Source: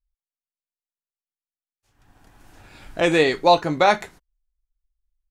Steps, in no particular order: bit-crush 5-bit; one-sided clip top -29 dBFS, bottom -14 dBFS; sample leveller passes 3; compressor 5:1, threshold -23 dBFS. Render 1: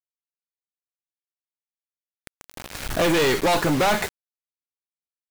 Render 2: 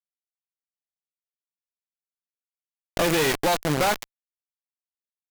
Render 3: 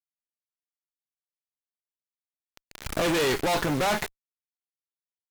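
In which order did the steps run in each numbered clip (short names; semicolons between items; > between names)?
one-sided clip > compressor > sample leveller > bit-crush; compressor > bit-crush > sample leveller > one-sided clip; sample leveller > bit-crush > one-sided clip > compressor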